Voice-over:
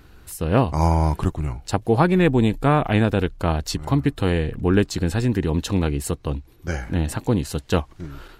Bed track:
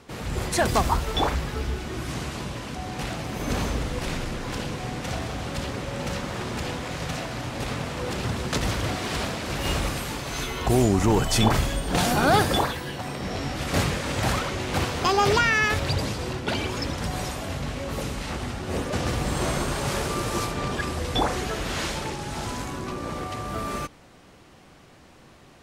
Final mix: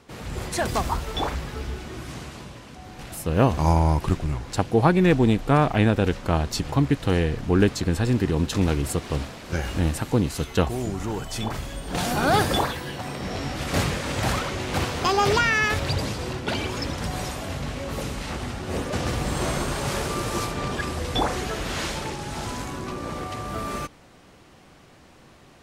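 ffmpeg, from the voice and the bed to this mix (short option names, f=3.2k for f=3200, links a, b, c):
-filter_complex "[0:a]adelay=2850,volume=-1dB[a];[1:a]volume=6dB,afade=t=out:st=1.8:d=0.85:silence=0.501187,afade=t=in:st=11.62:d=0.82:silence=0.354813[b];[a][b]amix=inputs=2:normalize=0"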